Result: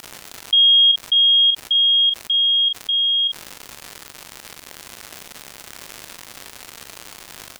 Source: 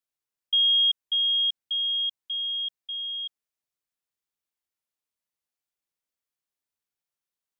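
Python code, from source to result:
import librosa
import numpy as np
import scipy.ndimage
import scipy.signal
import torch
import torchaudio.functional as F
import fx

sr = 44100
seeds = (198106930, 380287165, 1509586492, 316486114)

y = fx.dmg_crackle(x, sr, seeds[0], per_s=170.0, level_db=-52.0)
y = fx.doubler(y, sr, ms=42.0, db=-9)
y = fx.env_flatten(y, sr, amount_pct=50)
y = F.gain(torch.from_numpy(y), 6.0).numpy()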